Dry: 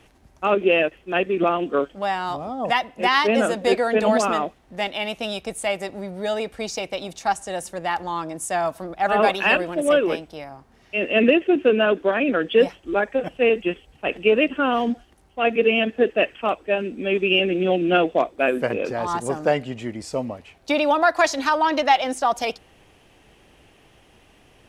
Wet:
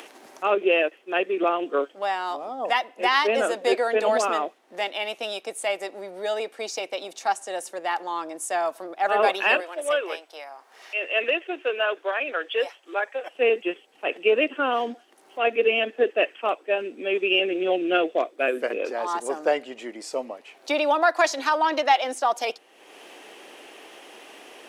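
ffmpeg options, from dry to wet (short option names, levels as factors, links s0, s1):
-filter_complex "[0:a]asettb=1/sr,asplit=3[s0][s1][s2];[s0]atrim=end=9.604[s3];[s1]atrim=start=9.6:end=13.35,asetpts=PTS-STARTPTS,afade=t=in:d=0.004:c=qsin,afade=t=out:st=3.746:d=0.004:c=qsin,highpass=670[s4];[s2]atrim=start=13.346[s5];[s3][s4]acrossfade=d=0.004:c1=hsin:c2=qsin[s6];[s6][s5]acrossfade=d=0.004:c1=qsin:c2=hsin,asettb=1/sr,asplit=3[s7][s8][s9];[s7]atrim=end=17.874[s10];[s8]atrim=start=17.87:end=18.8,asetpts=PTS-STARTPTS,afade=t=in:d=0.004:c=qsin,afade=t=out:st=0.926:d=0.004:c=qsin,equalizer=f=890:w=2.7:g=-6.5[s11];[s9]atrim=start=18.796[s12];[s10][s11]acrossfade=d=0.004:c1=hsin:c2=qsin[s13];[s13][s12]acrossfade=d=0.004:c1=qsin:c2=hsin,highpass=f=320:w=0.5412,highpass=f=320:w=1.3066,acompressor=mode=upward:threshold=0.0282:ratio=2.5,volume=0.794"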